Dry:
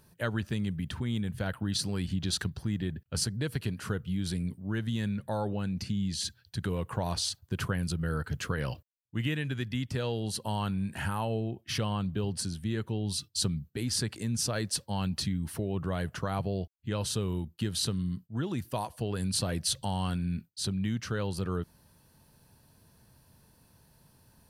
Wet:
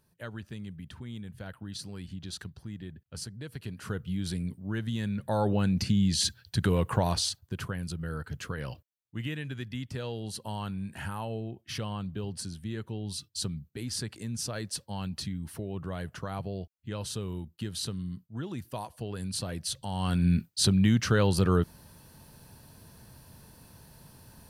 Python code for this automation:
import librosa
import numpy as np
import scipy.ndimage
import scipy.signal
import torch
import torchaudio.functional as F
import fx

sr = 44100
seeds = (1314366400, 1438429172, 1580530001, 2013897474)

y = fx.gain(x, sr, db=fx.line((3.5, -9.0), (4.0, -0.5), (5.07, -0.5), (5.51, 6.5), (6.95, 6.5), (7.63, -4.0), (19.86, -4.0), (20.27, 8.5)))